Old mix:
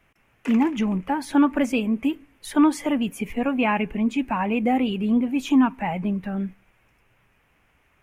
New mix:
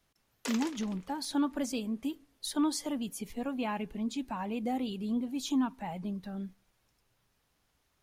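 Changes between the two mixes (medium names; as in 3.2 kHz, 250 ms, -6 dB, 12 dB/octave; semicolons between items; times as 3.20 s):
speech -11.5 dB; master: add resonant high shelf 3.2 kHz +9 dB, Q 3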